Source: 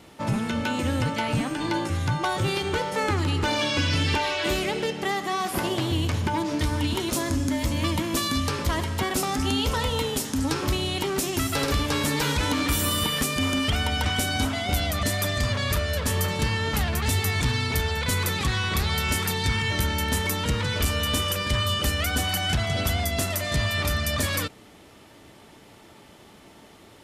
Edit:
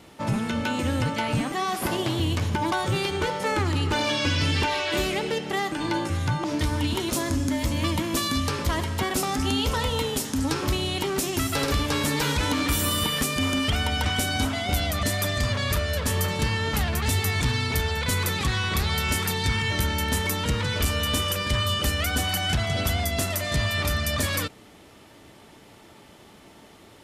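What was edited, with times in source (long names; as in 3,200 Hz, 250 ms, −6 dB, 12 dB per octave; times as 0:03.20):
0:01.52–0:02.24: swap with 0:05.24–0:06.44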